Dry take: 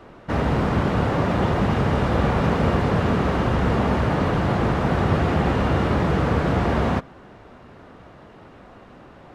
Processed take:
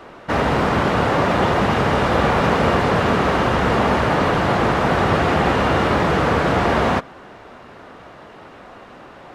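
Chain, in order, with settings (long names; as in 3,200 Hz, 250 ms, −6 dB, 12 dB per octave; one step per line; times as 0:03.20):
low-shelf EQ 290 Hz −11 dB
level +8 dB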